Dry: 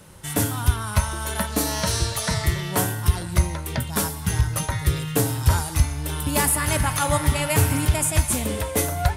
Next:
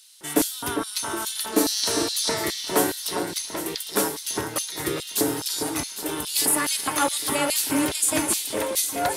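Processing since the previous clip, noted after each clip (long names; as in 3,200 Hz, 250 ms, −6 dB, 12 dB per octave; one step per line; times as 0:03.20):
auto-filter high-pass square 2.4 Hz 330–4,100 Hz
delay that swaps between a low-pass and a high-pass 403 ms, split 1,900 Hz, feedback 67%, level −7 dB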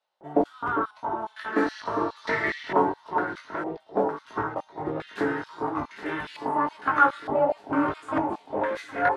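chorus effect 1.6 Hz, delay 18.5 ms, depth 2.5 ms
low-pass on a step sequencer 2.2 Hz 720–1,900 Hz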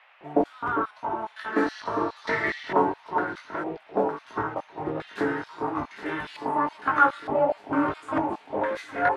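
noise in a band 630–2,700 Hz −57 dBFS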